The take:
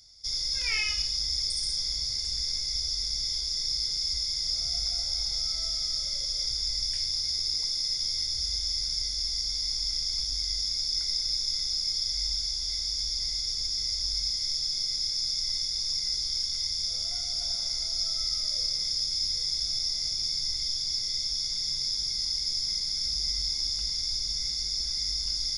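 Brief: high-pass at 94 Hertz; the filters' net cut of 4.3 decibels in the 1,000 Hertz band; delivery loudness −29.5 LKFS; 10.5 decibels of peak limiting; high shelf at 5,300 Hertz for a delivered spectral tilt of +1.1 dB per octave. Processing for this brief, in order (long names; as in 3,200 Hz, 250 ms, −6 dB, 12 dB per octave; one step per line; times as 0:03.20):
high-pass filter 94 Hz
parametric band 1,000 Hz −6 dB
high-shelf EQ 5,300 Hz −7 dB
level +4.5 dB
brickwall limiter −24 dBFS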